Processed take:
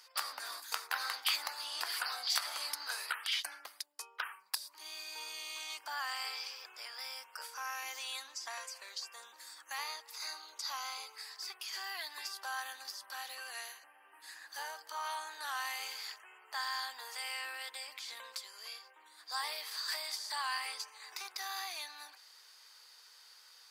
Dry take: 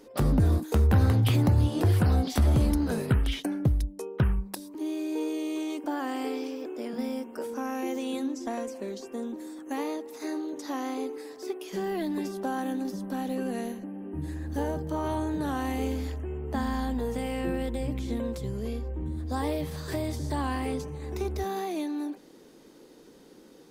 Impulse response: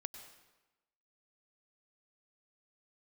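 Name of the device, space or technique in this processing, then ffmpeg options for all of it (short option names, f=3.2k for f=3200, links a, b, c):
headphones lying on a table: -filter_complex "[0:a]asettb=1/sr,asplit=3[a][b][c];[a]atrim=end=10.154[d];[b]atrim=start=10.15:end=11.15,asetpts=PTS-STARTPTS,afade=t=in:d=0.004:c=qsin,afade=t=out:st=0.996:d=0.004:c=qsin,bandreject=f=1.8k:w=6.5[e];[c]atrim=start=11.146[f];[d][e]acrossfade=d=0.004:c1=hsin:c2=qsin[g];[g][f]acrossfade=d=0.004:c1=qsin:c2=hsin,highpass=f=1.1k:w=0.5412,highpass=f=1.1k:w=1.3066,equalizer=f=4.7k:t=o:w=0.24:g=11.5,volume=1.5dB"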